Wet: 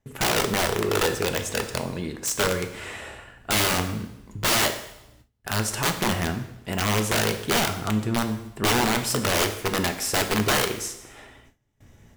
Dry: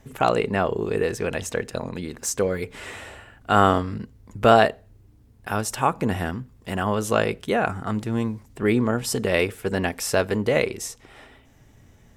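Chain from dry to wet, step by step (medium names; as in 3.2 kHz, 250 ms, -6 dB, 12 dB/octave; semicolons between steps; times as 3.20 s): integer overflow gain 16.5 dB; two-slope reverb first 0.81 s, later 2.1 s, from -26 dB, DRR 6 dB; gate with hold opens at -42 dBFS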